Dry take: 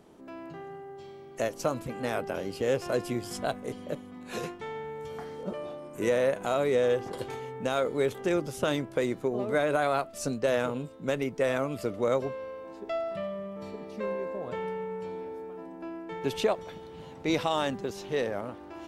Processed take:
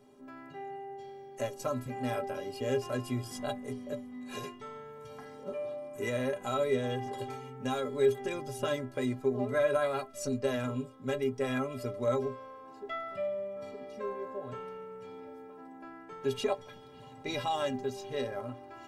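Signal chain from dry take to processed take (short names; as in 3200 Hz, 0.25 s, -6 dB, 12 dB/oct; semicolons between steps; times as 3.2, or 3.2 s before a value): metallic resonator 120 Hz, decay 0.23 s, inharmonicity 0.03; gain +5 dB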